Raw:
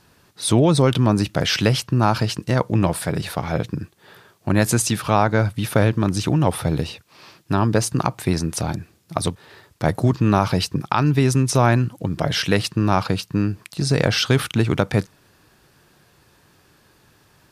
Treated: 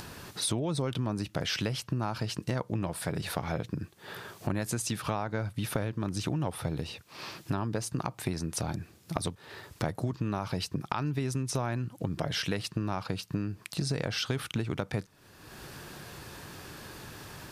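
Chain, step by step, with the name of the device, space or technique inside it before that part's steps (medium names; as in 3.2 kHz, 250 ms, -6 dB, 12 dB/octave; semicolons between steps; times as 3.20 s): upward and downward compression (upward compressor, threshold -34 dBFS; compression 6:1, threshold -29 dBFS, peak gain reduction 17 dB)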